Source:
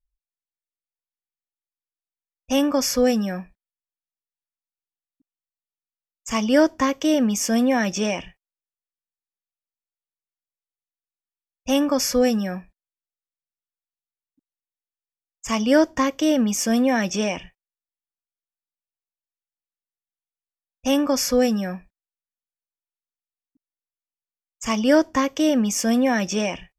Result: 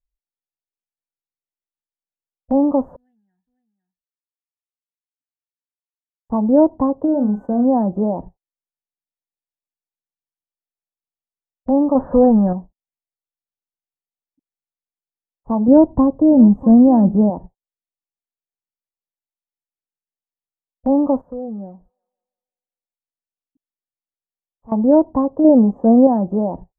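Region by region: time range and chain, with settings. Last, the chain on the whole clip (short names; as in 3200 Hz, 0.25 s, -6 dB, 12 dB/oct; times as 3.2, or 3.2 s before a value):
2.96–6.3 elliptic high-pass 1900 Hz + echo 0.505 s -9 dB
7.05–7.64 tilt shelf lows -4 dB, about 1400 Hz + whine 1500 Hz -38 dBFS + doubler 38 ms -8.5 dB
11.95–12.53 synth low-pass 1700 Hz, resonance Q 3.4 + power-law curve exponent 0.7
15.68–17.3 tone controls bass +10 dB, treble -1 dB + echo 0.644 s -18 dB
21.21–24.72 thin delay 0.173 s, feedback 47%, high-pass 2000 Hz, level -20.5 dB + compressor 3:1, threshold -38 dBFS
25.44–26.07 LPF 7000 Hz + dynamic EQ 470 Hz, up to +7 dB, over -32 dBFS, Q 0.82
whole clip: elliptic low-pass 910 Hz, stop band 60 dB; gate -38 dBFS, range -9 dB; dynamic EQ 440 Hz, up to -4 dB, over -29 dBFS, Q 0.93; gain +7.5 dB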